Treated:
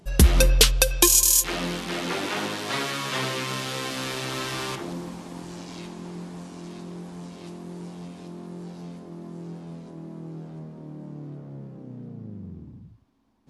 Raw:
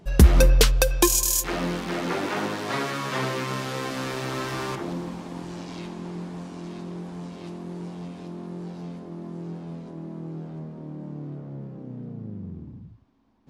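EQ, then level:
dynamic equaliser 3,200 Hz, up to +6 dB, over −43 dBFS, Q 1.2
linear-phase brick-wall low-pass 13,000 Hz
high-shelf EQ 6,000 Hz +10.5 dB
−2.5 dB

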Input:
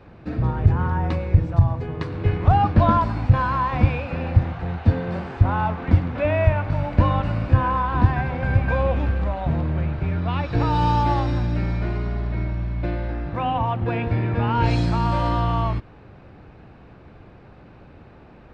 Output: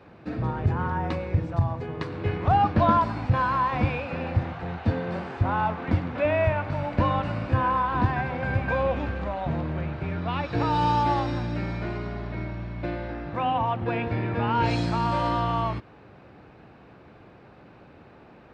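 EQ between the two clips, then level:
high-pass filter 190 Hz 6 dB per octave
−1.0 dB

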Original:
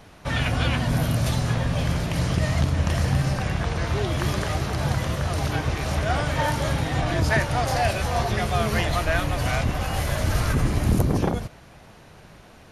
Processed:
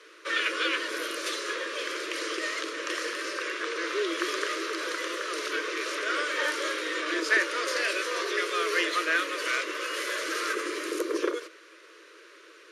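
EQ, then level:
Chebyshev high-pass with heavy ripple 320 Hz, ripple 3 dB
Butterworth band-reject 780 Hz, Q 1.2
low-pass filter 8,600 Hz 12 dB per octave
+3.0 dB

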